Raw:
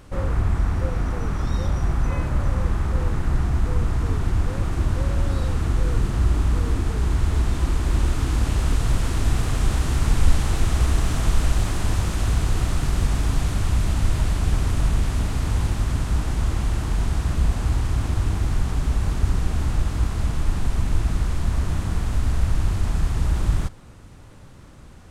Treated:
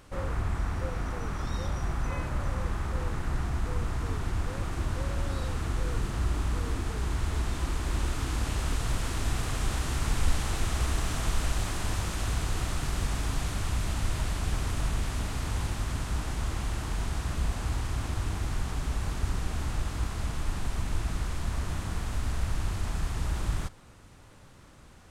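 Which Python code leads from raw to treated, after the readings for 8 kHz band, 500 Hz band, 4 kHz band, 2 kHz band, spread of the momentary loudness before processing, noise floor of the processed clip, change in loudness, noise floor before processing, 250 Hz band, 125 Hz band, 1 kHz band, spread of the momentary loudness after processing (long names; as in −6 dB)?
−3.0 dB, −6.0 dB, −3.0 dB, −3.5 dB, 3 LU, −52 dBFS, −8.5 dB, −43 dBFS, −8.0 dB, −9.5 dB, −4.0 dB, 3 LU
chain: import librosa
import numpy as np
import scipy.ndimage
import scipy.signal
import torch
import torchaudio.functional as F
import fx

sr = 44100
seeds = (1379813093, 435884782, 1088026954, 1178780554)

y = fx.low_shelf(x, sr, hz=460.0, db=-6.5)
y = F.gain(torch.from_numpy(y), -3.0).numpy()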